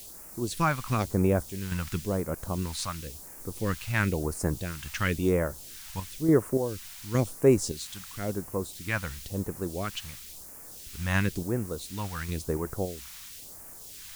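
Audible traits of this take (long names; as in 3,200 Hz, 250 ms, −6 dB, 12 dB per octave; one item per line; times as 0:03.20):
sample-and-hold tremolo, depth 65%
a quantiser's noise floor 8 bits, dither triangular
phaser sweep stages 2, 0.97 Hz, lowest notch 390–3,400 Hz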